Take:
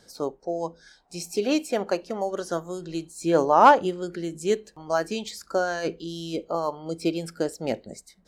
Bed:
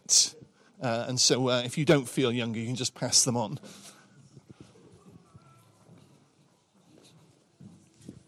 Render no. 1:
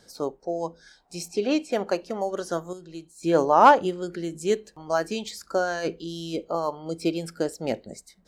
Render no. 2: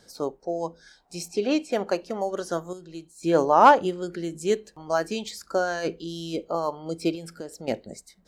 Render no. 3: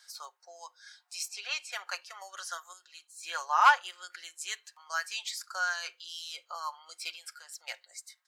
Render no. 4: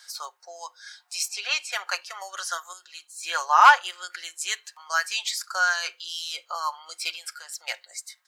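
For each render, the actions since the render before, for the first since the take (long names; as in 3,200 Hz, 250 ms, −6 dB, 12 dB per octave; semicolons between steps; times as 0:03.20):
0:01.28–0:01.72: high-frequency loss of the air 75 metres; 0:02.73–0:03.23: clip gain −8 dB
0:07.15–0:07.68: downward compressor 2.5 to 1, threshold −37 dBFS
inverse Chebyshev high-pass filter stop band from 200 Hz, stop band 80 dB; comb filter 5.6 ms, depth 44%
level +8.5 dB; brickwall limiter −3 dBFS, peak gain reduction 2.5 dB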